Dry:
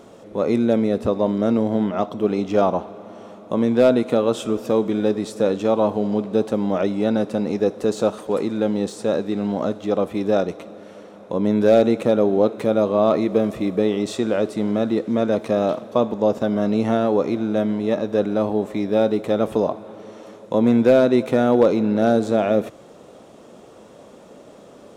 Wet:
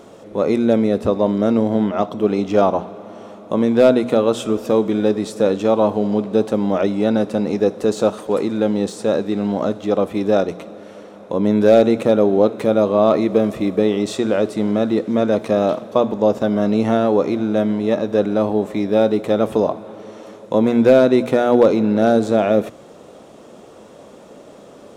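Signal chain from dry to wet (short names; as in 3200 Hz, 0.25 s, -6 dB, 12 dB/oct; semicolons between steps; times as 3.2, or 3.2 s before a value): notches 60/120/180/240 Hz; gain +3 dB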